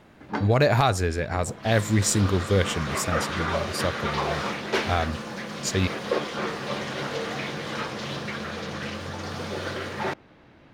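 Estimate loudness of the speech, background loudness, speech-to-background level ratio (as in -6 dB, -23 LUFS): -25.5 LUFS, -30.5 LUFS, 5.0 dB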